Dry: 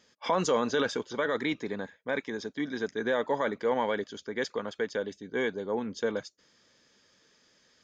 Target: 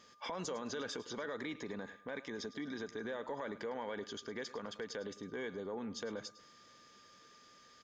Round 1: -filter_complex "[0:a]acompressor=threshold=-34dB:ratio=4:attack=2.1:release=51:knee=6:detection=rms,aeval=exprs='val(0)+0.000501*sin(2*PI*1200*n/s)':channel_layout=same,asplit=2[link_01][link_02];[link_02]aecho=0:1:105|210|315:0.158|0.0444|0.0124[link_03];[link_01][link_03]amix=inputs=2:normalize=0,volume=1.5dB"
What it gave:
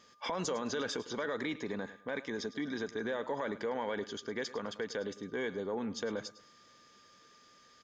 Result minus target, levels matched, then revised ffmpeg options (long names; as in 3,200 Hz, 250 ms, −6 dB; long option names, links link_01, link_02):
downward compressor: peak gain reduction −5.5 dB
-filter_complex "[0:a]acompressor=threshold=-41.5dB:ratio=4:attack=2.1:release=51:knee=6:detection=rms,aeval=exprs='val(0)+0.000501*sin(2*PI*1200*n/s)':channel_layout=same,asplit=2[link_01][link_02];[link_02]aecho=0:1:105|210|315:0.158|0.0444|0.0124[link_03];[link_01][link_03]amix=inputs=2:normalize=0,volume=1.5dB"